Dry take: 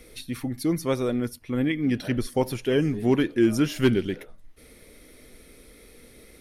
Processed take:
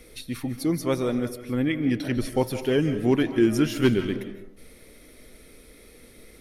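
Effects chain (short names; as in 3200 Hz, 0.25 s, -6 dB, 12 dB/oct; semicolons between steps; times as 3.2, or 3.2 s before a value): digital reverb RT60 0.69 s, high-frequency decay 0.4×, pre-delay 0.115 s, DRR 9.5 dB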